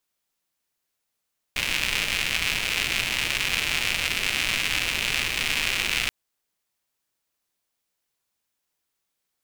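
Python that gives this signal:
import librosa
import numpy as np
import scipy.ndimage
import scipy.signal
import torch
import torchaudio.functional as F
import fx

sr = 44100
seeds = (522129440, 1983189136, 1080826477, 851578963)

y = fx.rain(sr, seeds[0], length_s=4.53, drops_per_s=200.0, hz=2500.0, bed_db=-9.5)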